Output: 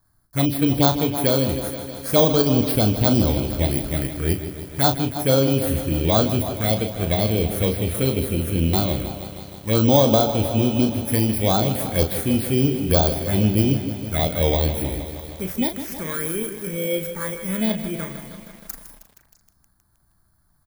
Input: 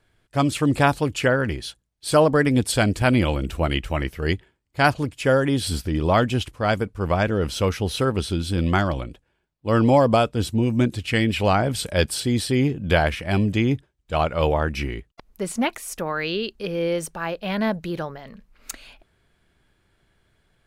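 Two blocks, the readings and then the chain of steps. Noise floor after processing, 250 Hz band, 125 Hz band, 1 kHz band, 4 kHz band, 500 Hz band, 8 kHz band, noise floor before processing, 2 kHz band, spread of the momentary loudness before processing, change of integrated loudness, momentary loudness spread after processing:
-63 dBFS, +1.5 dB, +2.0 dB, -3.0 dB, +1.5 dB, 0.0 dB, +2.5 dB, -70 dBFS, -7.5 dB, 11 LU, +1.5 dB, 12 LU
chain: FFT order left unsorted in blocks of 16 samples; envelope phaser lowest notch 460 Hz, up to 2000 Hz, full sweep at -14 dBFS; doubler 37 ms -8 dB; on a send: delay with a stepping band-pass 0.164 s, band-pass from 290 Hz, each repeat 1.4 oct, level -9 dB; on the sum: lo-fi delay 0.157 s, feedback 80%, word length 7-bit, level -12 dB; gain +1 dB

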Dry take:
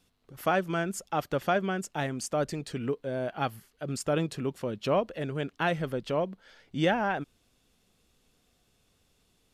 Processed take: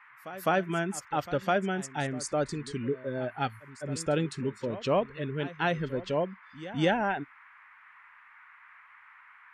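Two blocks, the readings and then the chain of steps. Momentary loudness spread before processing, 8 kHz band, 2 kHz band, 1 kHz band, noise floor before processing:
7 LU, 0.0 dB, +0.5 dB, 0.0 dB, -70 dBFS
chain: spectral noise reduction 20 dB; band noise 970–2200 Hz -55 dBFS; pre-echo 0.207 s -16 dB

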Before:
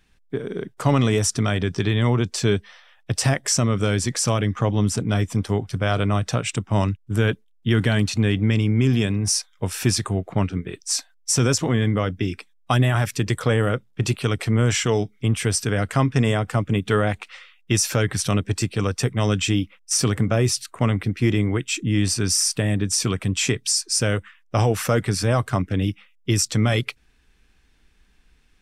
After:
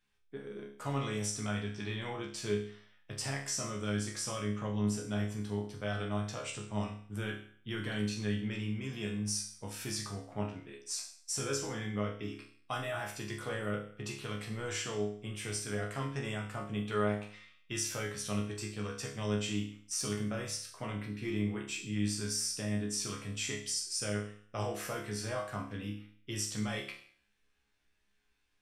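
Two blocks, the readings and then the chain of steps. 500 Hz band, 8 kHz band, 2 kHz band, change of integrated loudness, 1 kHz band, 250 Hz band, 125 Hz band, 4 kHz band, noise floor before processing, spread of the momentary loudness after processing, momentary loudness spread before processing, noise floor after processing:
-14.0 dB, -13.5 dB, -13.0 dB, -15.0 dB, -14.0 dB, -14.0 dB, -18.0 dB, -13.5 dB, -58 dBFS, 8 LU, 6 LU, -73 dBFS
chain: low shelf 310 Hz -7.5 dB; resonator bank C#2 fifth, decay 0.53 s

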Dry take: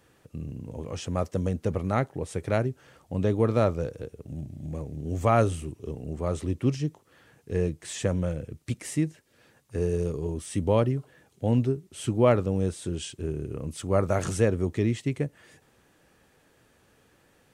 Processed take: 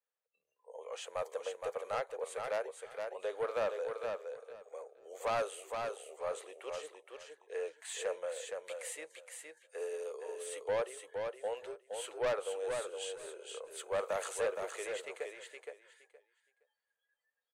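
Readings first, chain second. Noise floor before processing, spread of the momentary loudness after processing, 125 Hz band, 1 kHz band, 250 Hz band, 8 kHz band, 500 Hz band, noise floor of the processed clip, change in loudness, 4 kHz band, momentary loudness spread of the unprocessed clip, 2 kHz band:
-63 dBFS, 14 LU, -35.5 dB, -8.0 dB, -29.0 dB, -5.0 dB, -8.5 dB, under -85 dBFS, -11.5 dB, -4.5 dB, 13 LU, -4.5 dB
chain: spectral noise reduction 29 dB; elliptic high-pass 480 Hz, stop band 50 dB; bell 5400 Hz -12 dB 0.27 oct; soft clip -25 dBFS, distortion -9 dB; on a send: feedback echo 0.468 s, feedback 18%, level -5 dB; on the sum: gain -3.5 dB

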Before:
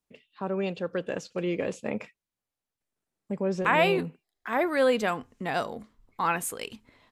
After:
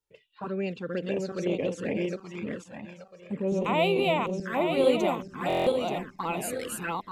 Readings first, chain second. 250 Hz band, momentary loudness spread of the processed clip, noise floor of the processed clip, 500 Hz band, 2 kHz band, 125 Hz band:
+2.0 dB, 14 LU, -60 dBFS, +1.5 dB, -4.0 dB, +2.0 dB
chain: regenerating reverse delay 0.44 s, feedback 54%, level -1 dB; envelope flanger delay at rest 2.2 ms, full sweep at -23 dBFS; stuck buffer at 5.48, samples 1024, times 7

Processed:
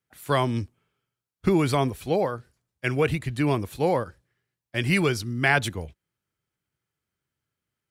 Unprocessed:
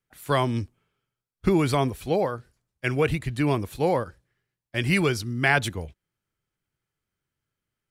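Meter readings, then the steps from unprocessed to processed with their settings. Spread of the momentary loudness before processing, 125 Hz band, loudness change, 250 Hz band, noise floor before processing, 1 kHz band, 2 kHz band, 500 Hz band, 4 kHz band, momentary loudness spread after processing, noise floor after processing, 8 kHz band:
11 LU, 0.0 dB, 0.0 dB, 0.0 dB, under -85 dBFS, 0.0 dB, 0.0 dB, 0.0 dB, 0.0 dB, 11 LU, under -85 dBFS, 0.0 dB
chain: HPF 55 Hz

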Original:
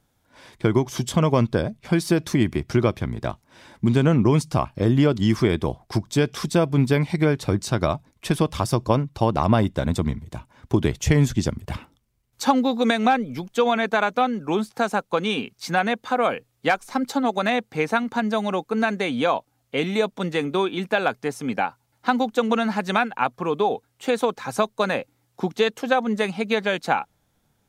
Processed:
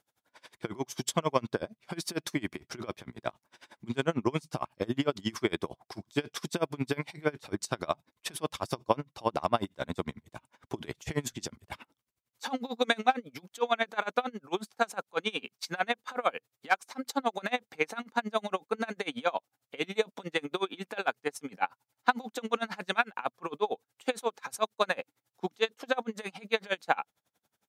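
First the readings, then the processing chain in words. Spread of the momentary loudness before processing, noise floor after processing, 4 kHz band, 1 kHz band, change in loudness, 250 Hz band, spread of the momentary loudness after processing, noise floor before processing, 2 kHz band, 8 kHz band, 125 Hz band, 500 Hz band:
8 LU, under -85 dBFS, -6.0 dB, -8.0 dB, -10.5 dB, -14.0 dB, 10 LU, -69 dBFS, -7.0 dB, -6.5 dB, -18.5 dB, -10.0 dB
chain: HPF 550 Hz 6 dB/oct; dB-linear tremolo 11 Hz, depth 28 dB

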